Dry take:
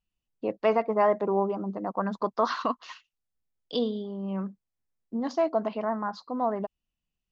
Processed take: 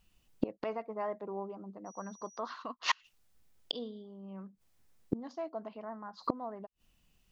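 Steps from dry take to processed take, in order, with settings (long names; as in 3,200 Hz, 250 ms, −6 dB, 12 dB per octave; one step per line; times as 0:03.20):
gate with flip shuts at −31 dBFS, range −30 dB
0:01.85–0:02.38: steady tone 5,800 Hz −72 dBFS
level +16 dB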